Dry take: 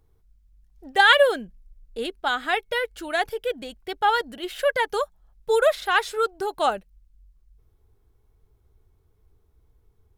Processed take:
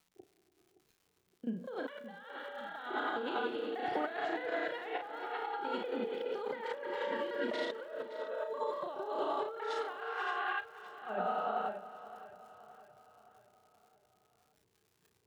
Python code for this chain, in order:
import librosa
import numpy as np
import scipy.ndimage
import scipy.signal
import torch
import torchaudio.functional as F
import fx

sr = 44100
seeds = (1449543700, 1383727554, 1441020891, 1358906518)

p1 = fx.block_reorder(x, sr, ms=139.0, group=6)
p2 = fx.rev_gated(p1, sr, seeds[0], gate_ms=420, shape='flat', drr_db=3.0)
p3 = fx.over_compress(p2, sr, threshold_db=-31.0, ratio=-1.0)
p4 = scipy.signal.sosfilt(scipy.signal.butter(4, 140.0, 'highpass', fs=sr, output='sos'), p3)
p5 = fx.spacing_loss(p4, sr, db_at_10k=26)
p6 = fx.dmg_crackle(p5, sr, seeds[1], per_s=220.0, level_db=-45.0)
p7 = fx.stretch_grains(p6, sr, factor=1.5, grain_ms=198.0)
p8 = fx.noise_reduce_blind(p7, sr, reduce_db=6)
p9 = p8 + fx.echo_feedback(p8, sr, ms=569, feedback_pct=49, wet_db=-15.0, dry=0)
y = p9 * librosa.db_to_amplitude(-5.0)